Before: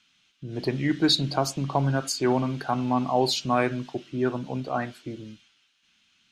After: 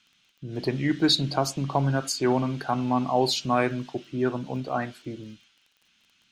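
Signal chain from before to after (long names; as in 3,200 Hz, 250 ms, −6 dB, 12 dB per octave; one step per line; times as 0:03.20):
surface crackle 20 per second −46 dBFS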